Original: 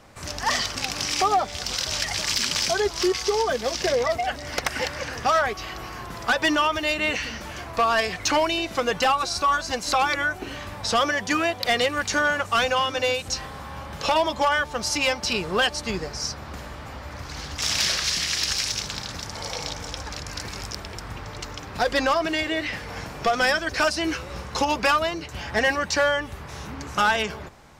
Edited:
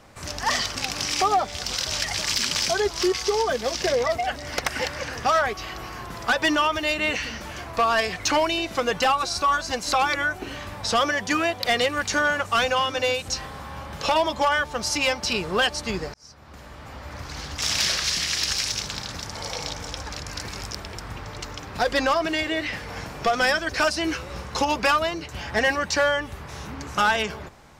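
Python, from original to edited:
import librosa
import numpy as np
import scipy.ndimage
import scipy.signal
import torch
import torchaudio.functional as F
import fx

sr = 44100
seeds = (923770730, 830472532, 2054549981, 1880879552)

y = fx.edit(x, sr, fx.fade_in_span(start_s=16.14, length_s=1.02), tone=tone)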